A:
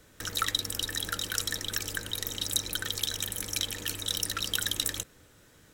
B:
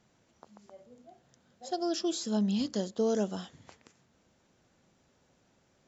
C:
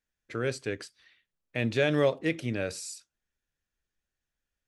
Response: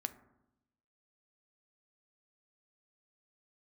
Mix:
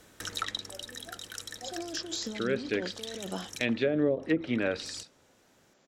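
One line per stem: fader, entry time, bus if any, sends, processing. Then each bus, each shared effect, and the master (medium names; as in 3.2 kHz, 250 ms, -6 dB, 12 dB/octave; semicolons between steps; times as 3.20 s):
+2.5 dB, 0.00 s, no send, auto duck -12 dB, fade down 0.80 s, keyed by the second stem
-0.5 dB, 0.00 s, no send, high-pass 190 Hz 12 dB/octave; compressor with a negative ratio -37 dBFS, ratio -1
-0.5 dB, 2.05 s, send -11 dB, ten-band graphic EQ 125 Hz -6 dB, 250 Hz +5 dB, 1 kHz +4 dB, 2 kHz +4 dB, 4 kHz +10 dB; rotary cabinet horn 0.7 Hz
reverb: on, RT60 0.85 s, pre-delay 4 ms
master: low-pass that closes with the level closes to 430 Hz, closed at -18.5 dBFS; bass shelf 87 Hz -8.5 dB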